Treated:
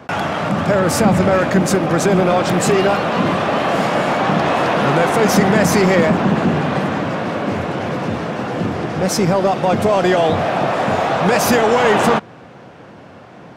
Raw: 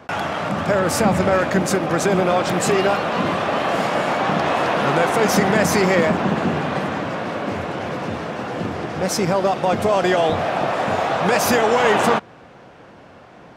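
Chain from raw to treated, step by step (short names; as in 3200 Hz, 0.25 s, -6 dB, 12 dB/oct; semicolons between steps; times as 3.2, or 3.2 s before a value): HPF 100 Hz; low shelf 220 Hz +7 dB; in parallel at -4 dB: soft clip -15.5 dBFS, distortion -11 dB; on the sum: gain -1 dB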